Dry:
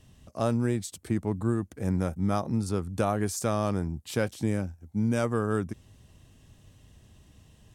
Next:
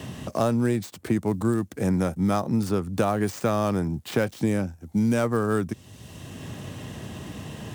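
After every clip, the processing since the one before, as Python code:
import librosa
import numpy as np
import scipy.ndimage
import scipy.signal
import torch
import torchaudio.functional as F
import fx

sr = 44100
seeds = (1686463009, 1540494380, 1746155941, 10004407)

y = fx.dead_time(x, sr, dead_ms=0.056)
y = scipy.signal.sosfilt(scipy.signal.butter(2, 110.0, 'highpass', fs=sr, output='sos'), y)
y = fx.band_squash(y, sr, depth_pct=70)
y = F.gain(torch.from_numpy(y), 4.5).numpy()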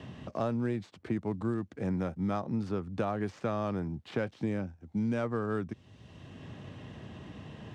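y = scipy.signal.sosfilt(scipy.signal.butter(2, 3600.0, 'lowpass', fs=sr, output='sos'), x)
y = F.gain(torch.from_numpy(y), -8.5).numpy()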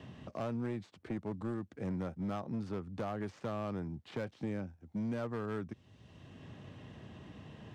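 y = np.clip(10.0 ** (26.5 / 20.0) * x, -1.0, 1.0) / 10.0 ** (26.5 / 20.0)
y = F.gain(torch.from_numpy(y), -5.0).numpy()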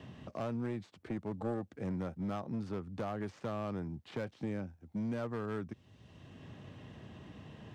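y = fx.spec_box(x, sr, start_s=1.36, length_s=0.33, low_hz=440.0, high_hz=880.0, gain_db=11)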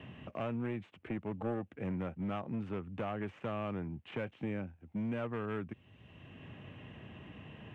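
y = fx.high_shelf_res(x, sr, hz=3600.0, db=-9.5, q=3.0)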